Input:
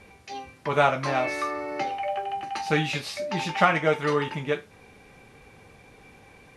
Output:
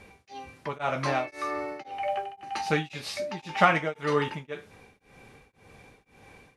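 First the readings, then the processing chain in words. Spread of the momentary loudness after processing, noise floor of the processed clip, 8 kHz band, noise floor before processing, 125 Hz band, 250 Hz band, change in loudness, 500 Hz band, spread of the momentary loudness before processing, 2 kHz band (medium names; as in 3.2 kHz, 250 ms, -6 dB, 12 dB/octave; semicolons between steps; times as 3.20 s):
17 LU, -64 dBFS, -3.0 dB, -53 dBFS, -3.5 dB, -3.0 dB, -3.0 dB, -4.0 dB, 10 LU, -3.0 dB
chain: tremolo of two beating tones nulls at 1.9 Hz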